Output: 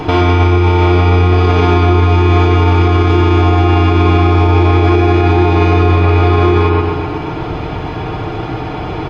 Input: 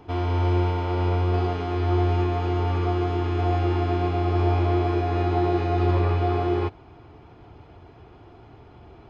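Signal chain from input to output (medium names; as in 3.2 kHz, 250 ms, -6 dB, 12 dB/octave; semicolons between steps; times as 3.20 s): treble shelf 4.6 kHz -11.5 dB; compression, threshold -30 dBFS, peak gain reduction 12 dB; treble shelf 2.3 kHz +10.5 dB; comb 6.5 ms, depth 45%; feedback echo behind a low-pass 125 ms, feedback 58%, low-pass 3.1 kHz, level -4.5 dB; loudness maximiser +26 dB; trim -1 dB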